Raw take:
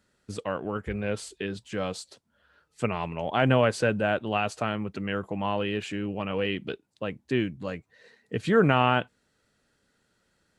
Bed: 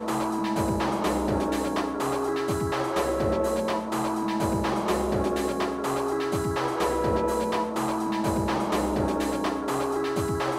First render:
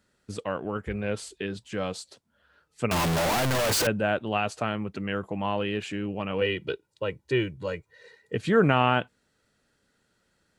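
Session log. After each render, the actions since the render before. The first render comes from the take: 2.91–3.87 infinite clipping; 6.41–8.35 comb 2.1 ms, depth 75%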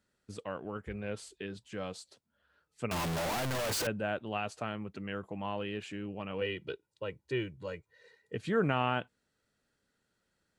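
gain -8.5 dB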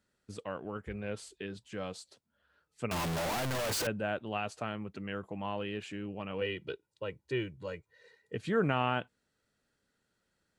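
nothing audible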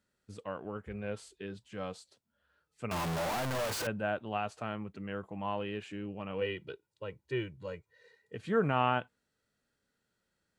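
dynamic EQ 1000 Hz, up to +4 dB, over -47 dBFS, Q 0.86; harmonic-percussive split percussive -6 dB

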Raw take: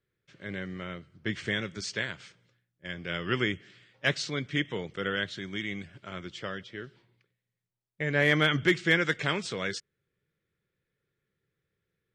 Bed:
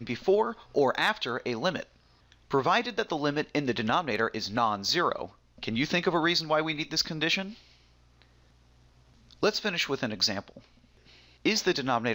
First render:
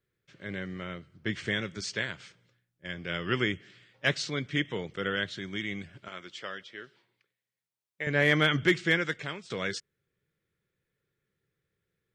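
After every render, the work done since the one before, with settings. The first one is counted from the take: 6.08–8.07 HPF 630 Hz 6 dB/oct; 8.78–9.5 fade out, to -16 dB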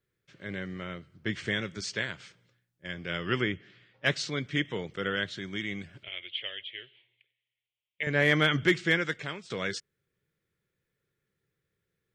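3.41–4.06 air absorption 140 m; 6.03–8.03 EQ curve 120 Hz 0 dB, 180 Hz -19 dB, 390 Hz -6 dB, 620 Hz -5 dB, 950 Hz -13 dB, 1400 Hz -15 dB, 2100 Hz +6 dB, 3200 Hz +12 dB, 5700 Hz -30 dB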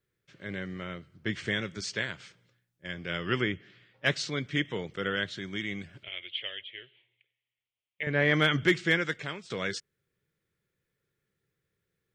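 6.61–8.34 air absorption 160 m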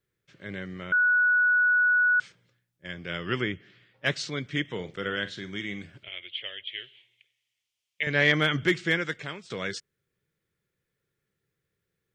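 0.92–2.2 bleep 1470 Hz -18.5 dBFS; 4.74–5.93 flutter echo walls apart 7.5 m, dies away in 0.22 s; 6.67–8.32 bell 5500 Hz +14.5 dB 2.1 oct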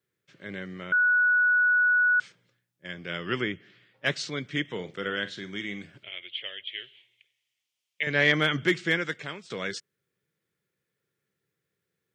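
HPF 130 Hz 12 dB/oct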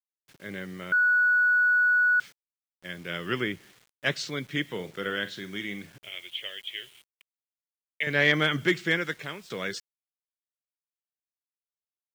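bit-crush 9-bit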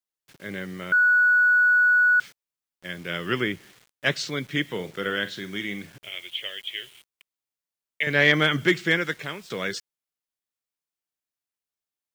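gain +3.5 dB

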